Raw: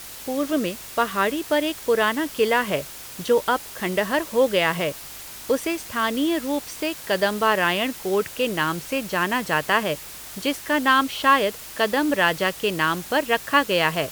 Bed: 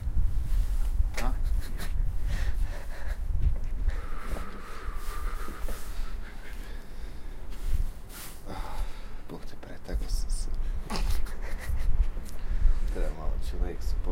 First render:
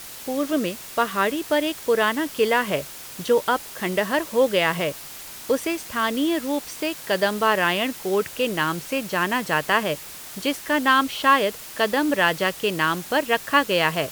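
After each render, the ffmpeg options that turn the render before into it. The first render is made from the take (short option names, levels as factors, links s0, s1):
-af "bandreject=f=50:t=h:w=4,bandreject=f=100:t=h:w=4"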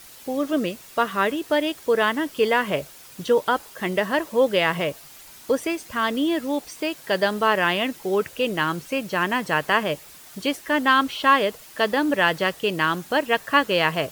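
-af "afftdn=nr=8:nf=-39"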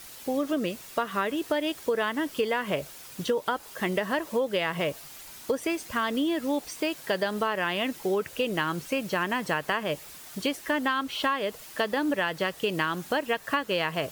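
-af "acompressor=threshold=0.0708:ratio=10"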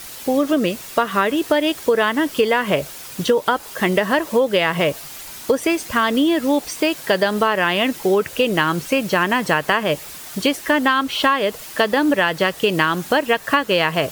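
-af "volume=3.16"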